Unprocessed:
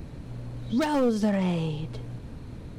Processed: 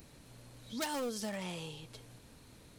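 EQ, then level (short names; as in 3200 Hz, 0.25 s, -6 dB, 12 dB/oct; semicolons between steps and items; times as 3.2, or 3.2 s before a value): pre-emphasis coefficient 0.8; low shelf 280 Hz -10 dB; +3.0 dB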